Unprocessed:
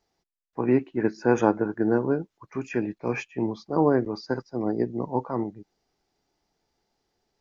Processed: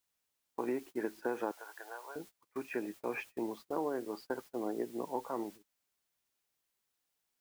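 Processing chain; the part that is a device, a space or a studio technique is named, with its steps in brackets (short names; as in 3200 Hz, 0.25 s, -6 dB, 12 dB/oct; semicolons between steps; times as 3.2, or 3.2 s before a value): baby monitor (BPF 330–3100 Hz; compressor 10:1, threshold -26 dBFS, peak gain reduction 11.5 dB; white noise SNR 20 dB; gate -43 dBFS, range -24 dB); 1.51–2.16 HPF 720 Hz 24 dB/oct; gain -5 dB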